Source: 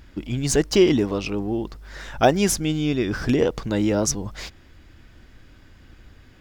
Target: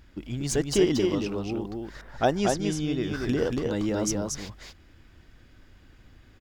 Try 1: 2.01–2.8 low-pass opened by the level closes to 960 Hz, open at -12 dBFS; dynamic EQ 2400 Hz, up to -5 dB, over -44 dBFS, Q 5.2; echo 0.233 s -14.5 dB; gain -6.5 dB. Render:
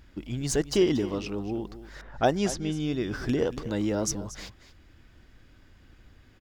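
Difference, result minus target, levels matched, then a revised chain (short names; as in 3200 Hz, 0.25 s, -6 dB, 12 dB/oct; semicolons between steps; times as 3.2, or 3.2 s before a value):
echo-to-direct -11 dB
2.01–2.8 low-pass opened by the level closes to 960 Hz, open at -12 dBFS; dynamic EQ 2400 Hz, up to -5 dB, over -44 dBFS, Q 5.2; echo 0.233 s -3.5 dB; gain -6.5 dB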